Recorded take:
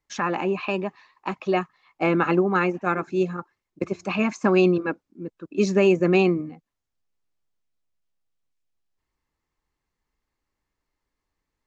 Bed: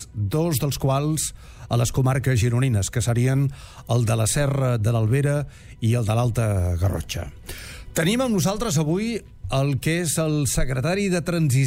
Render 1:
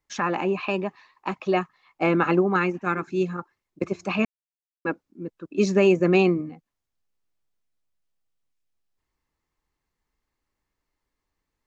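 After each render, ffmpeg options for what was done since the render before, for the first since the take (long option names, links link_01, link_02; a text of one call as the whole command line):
ffmpeg -i in.wav -filter_complex "[0:a]asettb=1/sr,asplit=3[link_01][link_02][link_03];[link_01]atrim=end=2.564[link_04];[link_02]atrim=start=2.56:end=3.32,asetpts=PTS-STARTPTS,afade=type=in:duration=0.004:curve=qsin,afade=type=out:start_time=0.756:duration=0.004:curve=qsin,equalizer=frequency=630:width_type=o:width=0.77:gain=-8[link_05];[link_03]atrim=start=3.316[link_06];[link_04][link_05]acrossfade=duration=0.004:curve1=hsin:curve2=qsin[link_07];[link_07][link_06]acrossfade=duration=0.004:curve1=qsin:curve2=hsin,asplit=3[link_08][link_09][link_10];[link_08]atrim=end=4.25,asetpts=PTS-STARTPTS,afade=type=out:start_time=4.246:duration=0.004:curve=hsin[link_11];[link_09]atrim=start=4.25:end=4.85,asetpts=PTS-STARTPTS,volume=0[link_12];[link_10]atrim=start=4.85,asetpts=PTS-STARTPTS,afade=type=in:duration=0.004:curve=hsin[link_13];[link_11][link_12][link_13]concat=n=3:v=0:a=1" out.wav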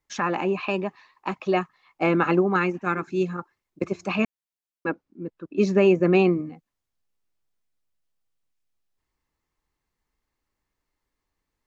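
ffmpeg -i in.wav -filter_complex "[0:a]asettb=1/sr,asplit=3[link_01][link_02][link_03];[link_01]atrim=end=4.894[link_04];[link_02]atrim=start=4.89:end=6.33,asetpts=PTS-STARTPTS,afade=type=in:duration=0.004:curve=qsin,afade=type=out:start_time=1.436:duration=0.004:curve=qsin,aemphasis=mode=reproduction:type=50fm[link_05];[link_03]atrim=start=6.326[link_06];[link_04][link_05]acrossfade=duration=0.004:curve1=hsin:curve2=qsin[link_07];[link_07][link_06]acrossfade=duration=0.004:curve1=qsin:curve2=hsin" out.wav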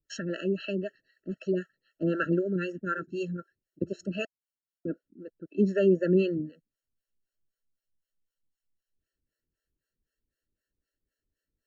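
ffmpeg -i in.wav -filter_complex "[0:a]acrossover=split=440[link_01][link_02];[link_01]aeval=exprs='val(0)*(1-1/2+1/2*cos(2*PI*3.9*n/s))':channel_layout=same[link_03];[link_02]aeval=exprs='val(0)*(1-1/2-1/2*cos(2*PI*3.9*n/s))':channel_layout=same[link_04];[link_03][link_04]amix=inputs=2:normalize=0,afftfilt=real='re*eq(mod(floor(b*sr/1024/650),2),0)':imag='im*eq(mod(floor(b*sr/1024/650),2),0)':win_size=1024:overlap=0.75" out.wav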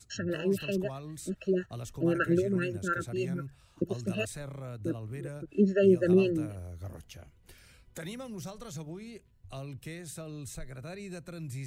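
ffmpeg -i in.wav -i bed.wav -filter_complex "[1:a]volume=-20dB[link_01];[0:a][link_01]amix=inputs=2:normalize=0" out.wav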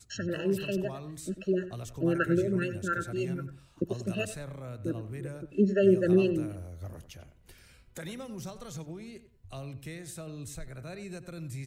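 ffmpeg -i in.wav -filter_complex "[0:a]asplit=2[link_01][link_02];[link_02]adelay=94,lowpass=frequency=2400:poles=1,volume=-12dB,asplit=2[link_03][link_04];[link_04]adelay=94,lowpass=frequency=2400:poles=1,volume=0.24,asplit=2[link_05][link_06];[link_06]adelay=94,lowpass=frequency=2400:poles=1,volume=0.24[link_07];[link_01][link_03][link_05][link_07]amix=inputs=4:normalize=0" out.wav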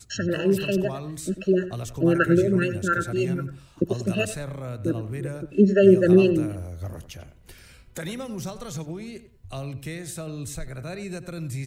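ffmpeg -i in.wav -af "volume=7.5dB" out.wav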